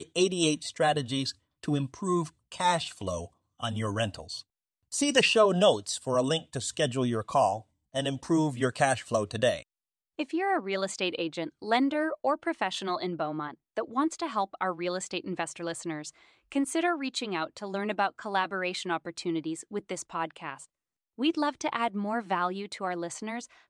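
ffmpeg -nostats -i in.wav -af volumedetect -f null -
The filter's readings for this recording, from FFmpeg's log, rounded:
mean_volume: -30.1 dB
max_volume: -9.3 dB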